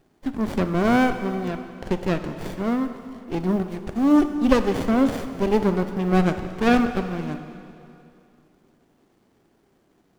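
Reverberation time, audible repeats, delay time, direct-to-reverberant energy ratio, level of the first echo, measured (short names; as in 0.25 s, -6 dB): 2.6 s, none, none, 8.0 dB, none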